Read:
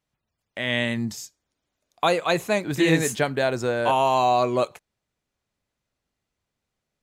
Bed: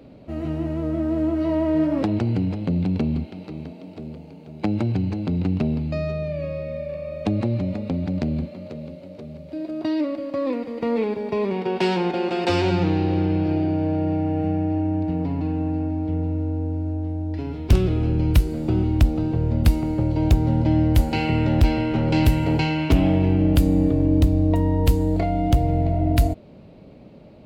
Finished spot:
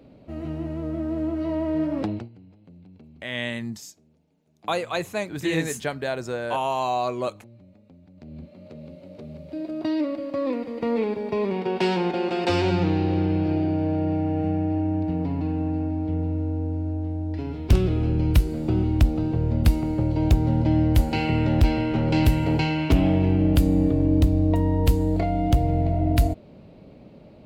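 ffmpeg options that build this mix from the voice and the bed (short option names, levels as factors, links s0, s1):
-filter_complex "[0:a]adelay=2650,volume=0.562[s0];[1:a]volume=10.6,afade=t=out:st=2.08:d=0.21:silence=0.0794328,afade=t=in:st=8.16:d=1.2:silence=0.0562341[s1];[s0][s1]amix=inputs=2:normalize=0"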